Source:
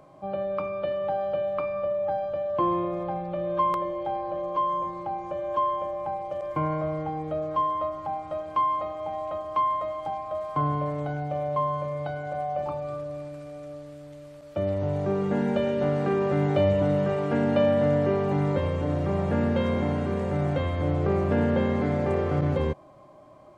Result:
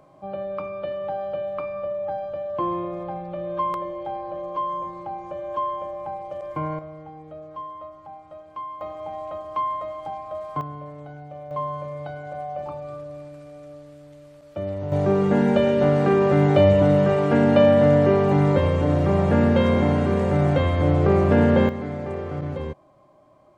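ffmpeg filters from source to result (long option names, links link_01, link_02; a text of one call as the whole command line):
ffmpeg -i in.wav -af "asetnsamples=nb_out_samples=441:pad=0,asendcmd='6.79 volume volume -10dB;8.81 volume volume -1dB;10.61 volume volume -9dB;11.51 volume volume -2dB;14.92 volume volume 6.5dB;21.69 volume volume -4.5dB',volume=-1dB" out.wav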